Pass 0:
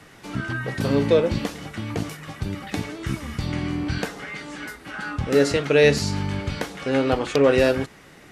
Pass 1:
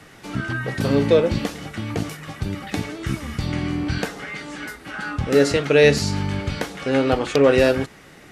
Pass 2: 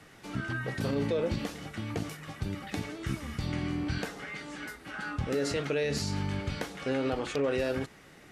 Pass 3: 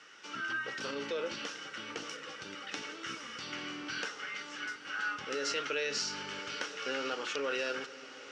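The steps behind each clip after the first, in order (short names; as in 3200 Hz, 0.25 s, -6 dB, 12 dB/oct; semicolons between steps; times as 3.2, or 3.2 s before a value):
notch 1000 Hz, Q 23; gain +2 dB
limiter -13 dBFS, peak gain reduction 11 dB; gain -8 dB
speaker cabinet 440–7400 Hz, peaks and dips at 700 Hz -9 dB, 1400 Hz +9 dB, 2900 Hz +9 dB, 5600 Hz +10 dB; diffused feedback echo 1.001 s, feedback 47%, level -14 dB; gain -3 dB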